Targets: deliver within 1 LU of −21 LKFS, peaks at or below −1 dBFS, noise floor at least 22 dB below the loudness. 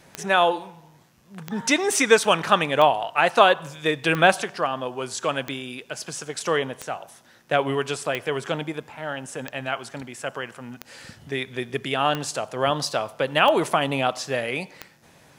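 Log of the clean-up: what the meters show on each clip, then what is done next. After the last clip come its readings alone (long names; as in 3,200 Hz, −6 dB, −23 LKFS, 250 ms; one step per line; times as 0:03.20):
number of clicks 12; integrated loudness −23.5 LKFS; sample peak −1.5 dBFS; target loudness −21.0 LKFS
→ click removal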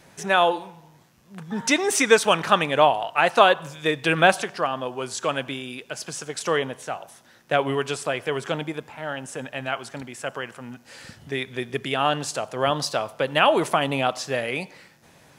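number of clicks 0; integrated loudness −23.5 LKFS; sample peak −1.5 dBFS; target loudness −21.0 LKFS
→ level +2.5 dB
brickwall limiter −1 dBFS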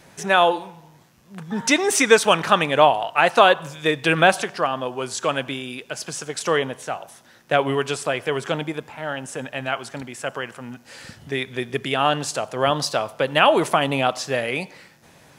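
integrated loudness −21.0 LKFS; sample peak −1.0 dBFS; background noise floor −52 dBFS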